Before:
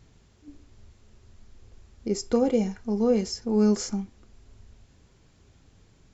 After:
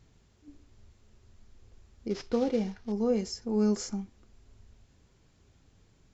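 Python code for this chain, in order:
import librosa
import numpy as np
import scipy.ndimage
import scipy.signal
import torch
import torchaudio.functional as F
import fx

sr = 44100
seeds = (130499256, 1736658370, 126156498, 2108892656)

y = fx.cvsd(x, sr, bps=32000, at=(2.1, 2.92))
y = F.gain(torch.from_numpy(y), -5.0).numpy()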